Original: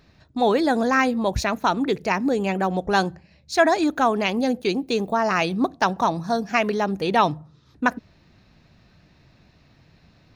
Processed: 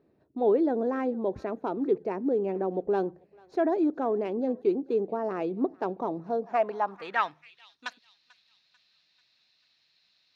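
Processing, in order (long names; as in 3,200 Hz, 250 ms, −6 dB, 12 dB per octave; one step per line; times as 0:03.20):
stylus tracing distortion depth 0.046 ms
feedback echo with a high-pass in the loop 441 ms, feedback 53%, high-pass 1,100 Hz, level −21.5 dB
band-pass filter sweep 390 Hz → 4,000 Hz, 0:06.26–0:07.77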